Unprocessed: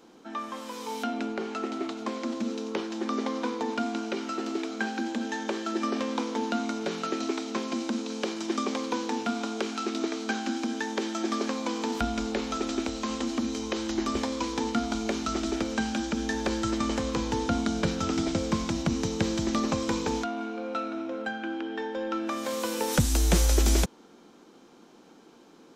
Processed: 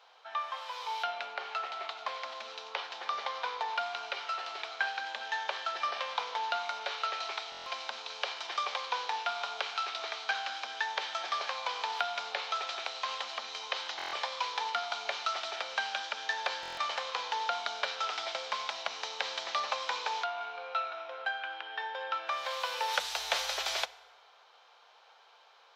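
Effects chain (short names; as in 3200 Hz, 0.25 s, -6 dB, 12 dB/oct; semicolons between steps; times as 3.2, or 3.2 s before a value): inverse Chebyshev high-pass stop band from 320 Hz, stop band 40 dB; resonant high shelf 5700 Hz -13.5 dB, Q 1.5; FDN reverb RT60 1.4 s, low-frequency decay 0.9×, high-frequency decay 0.65×, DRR 17 dB; stuck buffer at 7.5/13.97/16.61, samples 1024, times 6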